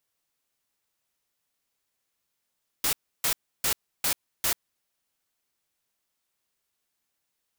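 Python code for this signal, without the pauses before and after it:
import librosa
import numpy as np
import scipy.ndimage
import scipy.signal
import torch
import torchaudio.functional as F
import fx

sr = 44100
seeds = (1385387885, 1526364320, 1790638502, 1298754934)

y = fx.noise_burst(sr, seeds[0], colour='white', on_s=0.09, off_s=0.31, bursts=5, level_db=-25.0)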